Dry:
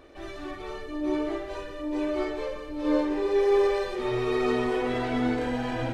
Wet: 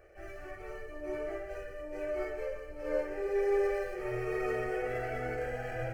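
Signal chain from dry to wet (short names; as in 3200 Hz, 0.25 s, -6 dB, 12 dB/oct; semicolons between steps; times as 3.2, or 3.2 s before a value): median filter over 5 samples; fixed phaser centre 1000 Hz, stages 6; attack slew limiter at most 240 dB/s; gain -3.5 dB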